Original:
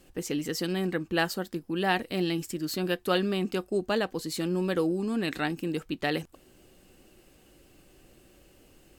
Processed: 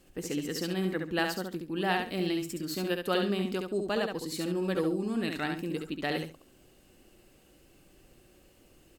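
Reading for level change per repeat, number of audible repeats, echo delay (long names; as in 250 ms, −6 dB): −13.5 dB, 2, 69 ms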